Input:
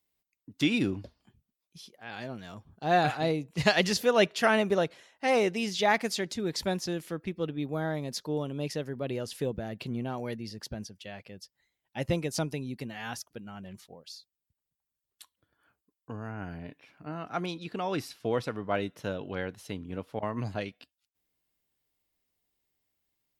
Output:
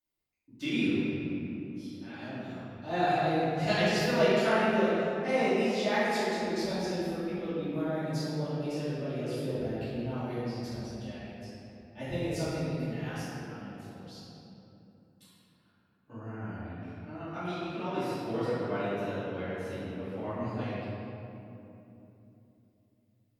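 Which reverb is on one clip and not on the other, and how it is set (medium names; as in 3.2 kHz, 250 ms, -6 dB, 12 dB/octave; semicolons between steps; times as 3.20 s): simulated room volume 140 m³, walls hard, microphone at 2.6 m; trim -17.5 dB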